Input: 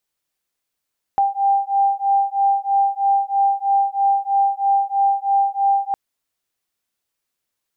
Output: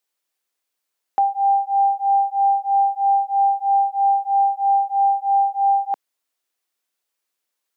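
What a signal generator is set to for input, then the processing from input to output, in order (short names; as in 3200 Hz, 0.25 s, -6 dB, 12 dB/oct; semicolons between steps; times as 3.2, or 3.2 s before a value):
beating tones 791 Hz, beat 3.1 Hz, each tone -18 dBFS 4.76 s
HPF 310 Hz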